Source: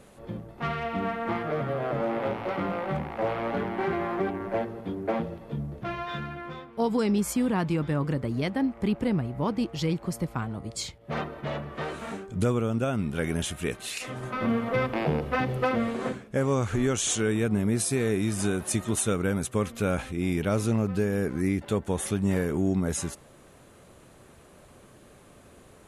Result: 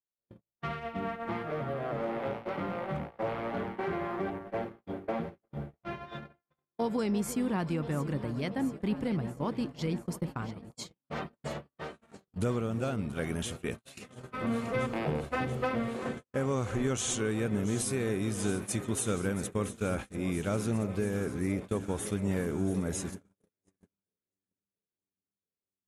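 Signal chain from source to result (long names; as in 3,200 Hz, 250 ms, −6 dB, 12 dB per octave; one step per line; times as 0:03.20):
delay that swaps between a low-pass and a high-pass 342 ms, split 870 Hz, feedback 86%, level −12 dB
noise gate −31 dBFS, range −51 dB
level −5.5 dB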